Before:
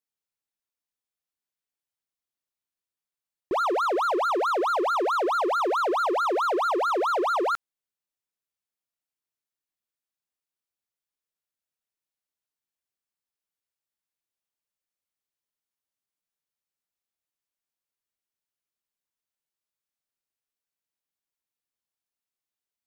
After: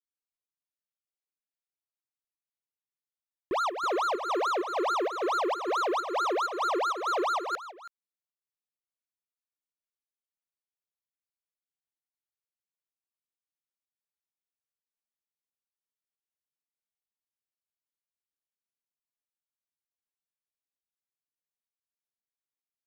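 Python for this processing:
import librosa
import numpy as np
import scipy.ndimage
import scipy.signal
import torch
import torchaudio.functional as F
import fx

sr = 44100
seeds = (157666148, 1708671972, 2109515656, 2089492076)

y = fx.leveller(x, sr, passes=3)
y = fx.volume_shaper(y, sr, bpm=130, per_beat=1, depth_db=-10, release_ms=140.0, shape='slow start')
y = y + 10.0 ** (-14.5 / 20.0) * np.pad(y, (int(325 * sr / 1000.0), 0))[:len(y)]
y = y * 10.0 ** (-6.0 / 20.0)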